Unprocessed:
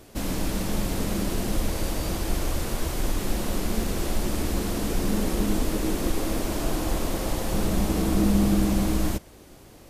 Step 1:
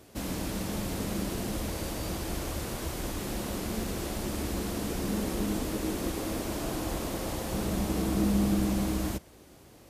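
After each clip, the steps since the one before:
high-pass filter 50 Hz
level −4.5 dB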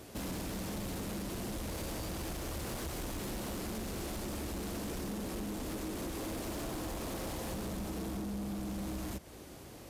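downward compressor 6 to 1, threshold −36 dBFS, peak gain reduction 13.5 dB
soft clipping −38.5 dBFS, distortion −12 dB
level +4 dB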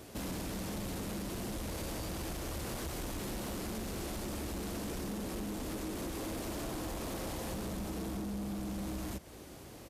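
downsampling to 32,000 Hz

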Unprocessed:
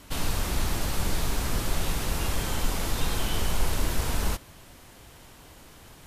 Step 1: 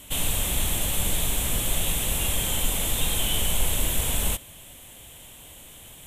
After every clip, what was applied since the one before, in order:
drawn EQ curve 200 Hz 0 dB, 380 Hz −3 dB, 560 Hz +2 dB, 900 Hz −2 dB, 1,400 Hz −5 dB, 3,400 Hz +10 dB, 4,800 Hz −9 dB, 7,700 Hz +11 dB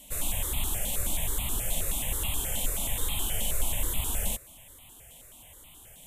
step-sequenced phaser 9.4 Hz 370–1,600 Hz
level −3.5 dB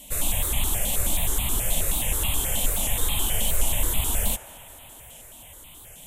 delay with a band-pass on its return 97 ms, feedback 83%, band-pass 1,100 Hz, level −13 dB
wow of a warped record 78 rpm, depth 100 cents
level +5.5 dB

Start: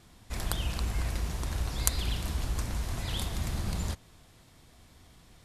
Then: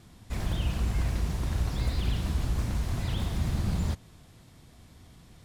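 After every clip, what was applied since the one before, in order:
parametric band 140 Hz +6.5 dB 2.5 octaves
slew-rate limiting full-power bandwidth 33 Hz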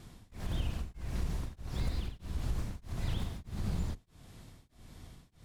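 sub-octave generator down 2 octaves, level −2 dB
downward compressor, threshold −30 dBFS, peak gain reduction 10 dB
tremolo along a rectified sine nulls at 1.6 Hz
level +1 dB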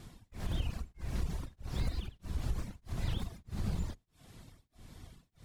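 reverb reduction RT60 0.9 s
level +1 dB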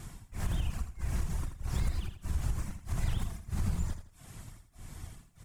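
graphic EQ with 10 bands 250 Hz −5 dB, 500 Hz −6 dB, 4,000 Hz −8 dB, 8,000 Hz +5 dB
downward compressor 2.5 to 1, threshold −36 dBFS, peak gain reduction 6 dB
on a send: repeating echo 82 ms, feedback 30%, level −10 dB
on the sum: level +7.5 dB

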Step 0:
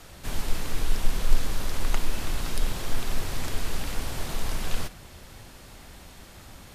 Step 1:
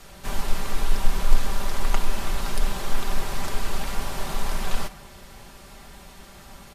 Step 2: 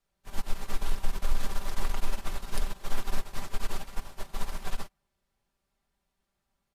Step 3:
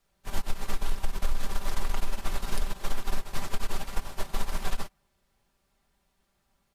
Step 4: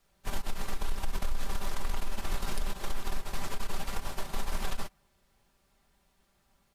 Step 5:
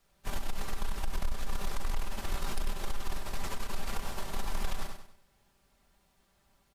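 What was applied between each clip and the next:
comb filter 5.1 ms, depth 51%; dynamic equaliser 950 Hz, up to +6 dB, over −54 dBFS, Q 1
brickwall limiter −13 dBFS, peak gain reduction 10.5 dB; bit-depth reduction 10 bits, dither none; expander for the loud parts 2.5 to 1, over −38 dBFS
downward compressor, threshold −27 dBFS, peak gain reduction 10.5 dB; level +7.5 dB
brickwall limiter −24 dBFS, peak gain reduction 10.5 dB; level +3 dB
on a send: repeating echo 97 ms, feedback 35%, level −7.5 dB; on the sum: soft clipping −21 dBFS, distortion −20 dB

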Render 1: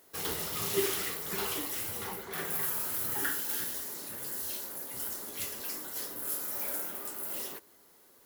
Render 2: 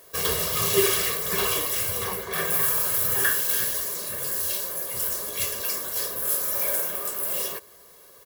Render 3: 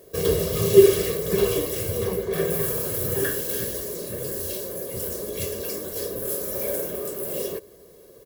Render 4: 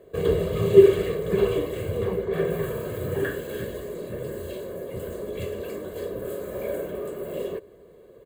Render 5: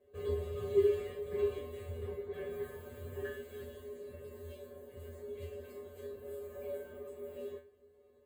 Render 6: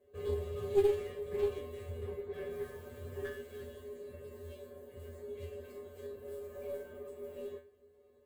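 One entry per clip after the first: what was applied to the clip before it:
comb filter 1.8 ms, depth 72%; level +8 dB
low shelf with overshoot 650 Hz +13 dB, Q 1.5; level −5 dB
moving average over 8 samples
tuned comb filter 82 Hz, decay 0.28 s, harmonics odd, mix 100%; level −4.5 dB
stylus tracing distortion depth 0.12 ms

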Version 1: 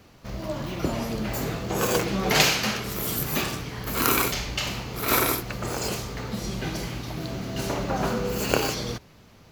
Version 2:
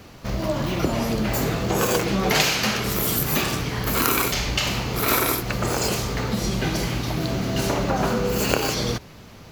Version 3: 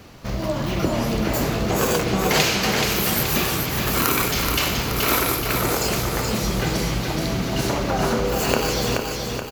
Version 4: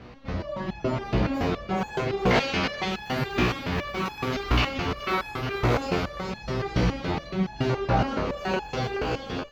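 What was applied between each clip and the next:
downward compressor 2.5 to 1, threshold −29 dBFS, peak gain reduction 10 dB; level +8.5 dB
repeating echo 427 ms, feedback 51%, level −4.5 dB
high-frequency loss of the air 240 metres; step-sequenced resonator 7.1 Hz 61–840 Hz; level +8.5 dB

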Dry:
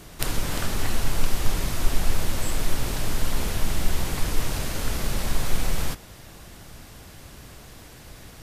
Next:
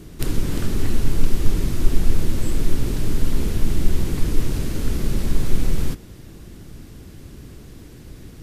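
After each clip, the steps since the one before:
low shelf with overshoot 490 Hz +9.5 dB, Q 1.5
level −4 dB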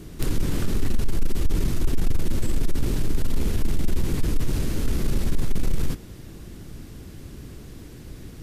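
soft clipping −12 dBFS, distortion −11 dB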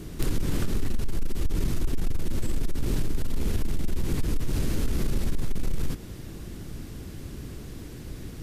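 downward compressor, threshold −21 dBFS, peak gain reduction 7.5 dB
level +1.5 dB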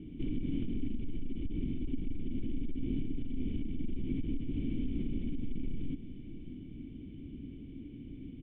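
formant resonators in series i
single-tap delay 594 ms −14 dB
level +2 dB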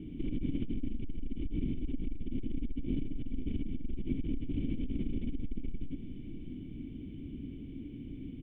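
saturating transformer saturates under 45 Hz
level +2.5 dB

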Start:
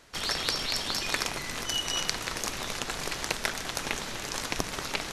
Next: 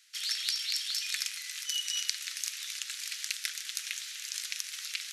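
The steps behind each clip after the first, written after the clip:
Bessel high-pass filter 2,900 Hz, order 8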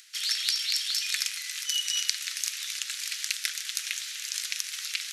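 upward compression, threshold −54 dBFS
level +4.5 dB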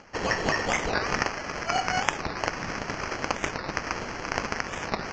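decimation without filtering 12×
downsampling to 16,000 Hz
wow of a warped record 45 rpm, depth 250 cents
level +2.5 dB

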